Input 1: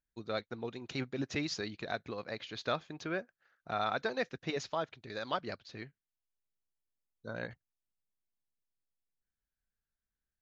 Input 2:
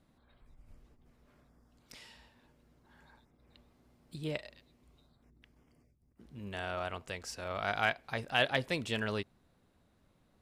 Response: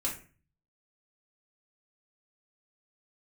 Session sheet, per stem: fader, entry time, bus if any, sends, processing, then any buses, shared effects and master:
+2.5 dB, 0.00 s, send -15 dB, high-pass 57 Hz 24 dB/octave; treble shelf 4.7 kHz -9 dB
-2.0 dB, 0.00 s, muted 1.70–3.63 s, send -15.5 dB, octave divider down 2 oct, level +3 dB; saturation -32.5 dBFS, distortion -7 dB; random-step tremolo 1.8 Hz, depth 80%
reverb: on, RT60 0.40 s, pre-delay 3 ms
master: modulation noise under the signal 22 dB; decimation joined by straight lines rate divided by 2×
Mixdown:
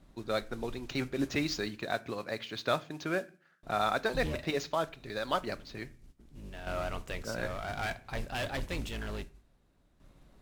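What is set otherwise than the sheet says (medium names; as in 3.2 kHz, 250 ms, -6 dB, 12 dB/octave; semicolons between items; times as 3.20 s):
stem 1: missing treble shelf 4.7 kHz -9 dB; stem 2 -2.0 dB -> +8.5 dB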